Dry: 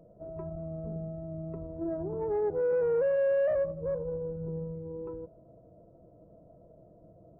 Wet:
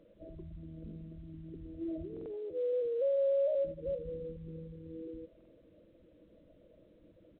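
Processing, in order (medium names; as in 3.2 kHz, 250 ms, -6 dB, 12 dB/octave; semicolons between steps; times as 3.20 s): resonances exaggerated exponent 3; comb 3.6 ms, depth 48%; buffer glitch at 2.12/5.36 s, samples 2048, times 2; trim -6.5 dB; µ-law 64 kbps 8 kHz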